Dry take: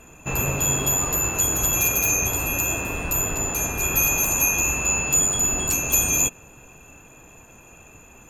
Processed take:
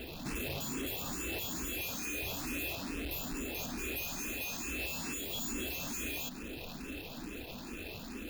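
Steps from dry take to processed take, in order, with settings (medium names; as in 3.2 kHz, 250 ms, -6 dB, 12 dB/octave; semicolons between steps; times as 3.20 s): square wave that keeps the level; 2.66–4.80 s: square tremolo 1.1 Hz, depth 60%, duty 10%; peak limiter -19 dBFS, peak gain reduction 11.5 dB; ten-band graphic EQ 125 Hz -8 dB, 250 Hz +10 dB, 1 kHz -5 dB, 4 kHz +9 dB, 8 kHz -12 dB, 16 kHz +5 dB; saturation -30 dBFS, distortion -7 dB; compression 4:1, threshold -37 dBFS, peak gain reduction 5 dB; barber-pole phaser +2.3 Hz; trim +1.5 dB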